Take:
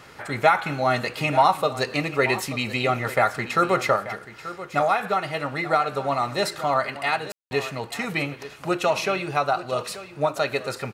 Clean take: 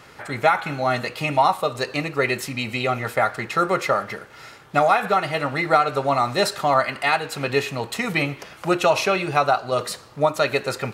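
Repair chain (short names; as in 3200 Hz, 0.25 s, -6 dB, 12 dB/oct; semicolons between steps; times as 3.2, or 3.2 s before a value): room tone fill 7.32–7.51; inverse comb 0.884 s -14.5 dB; gain correction +4 dB, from 3.96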